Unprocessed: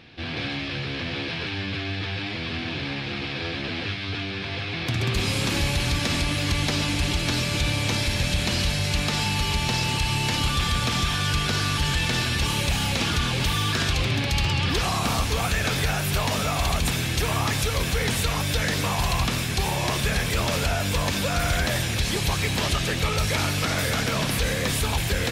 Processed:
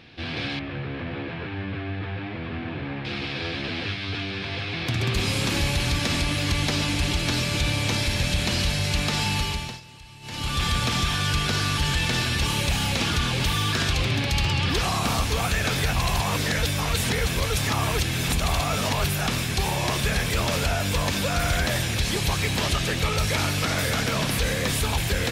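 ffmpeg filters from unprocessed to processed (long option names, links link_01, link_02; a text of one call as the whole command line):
ffmpeg -i in.wav -filter_complex "[0:a]asettb=1/sr,asplit=3[link_01][link_02][link_03];[link_01]atrim=end=0.594[link_04];[link_02]atrim=start=0.59:end=3.05,asetpts=PTS-STARTPTS,afade=type=in:duration=0.004:curve=qsin,afade=type=out:start_time=2.456:duration=0.004:curve=qsin,lowpass=1700[link_05];[link_03]atrim=start=3.046[link_06];[link_04][link_05]acrossfade=duration=0.004:curve1=hsin:curve2=qsin[link_07];[link_07][link_06]acrossfade=duration=0.004:curve1=qsin:curve2=hsin,asplit=5[link_08][link_09][link_10][link_11][link_12];[link_08]atrim=end=9.81,asetpts=PTS-STARTPTS,afade=type=out:start_time=9.37:duration=0.44:silence=0.0841395[link_13];[link_09]atrim=start=9.81:end=10.21,asetpts=PTS-STARTPTS,volume=-21.5dB[link_14];[link_10]atrim=start=10.21:end=15.932,asetpts=PTS-STARTPTS,afade=type=in:duration=0.44:silence=0.0841395[link_15];[link_11]atrim=start=15.928:end=19.272,asetpts=PTS-STARTPTS,areverse[link_16];[link_12]atrim=start=19.268[link_17];[link_13][link_14][link_15]concat=n=3:v=0:a=1[link_18];[link_18][link_16]acrossfade=duration=0.004:curve1=hsin:curve2=hsin[link_19];[link_19][link_17]acrossfade=duration=0.004:curve1=hsin:curve2=hsin" out.wav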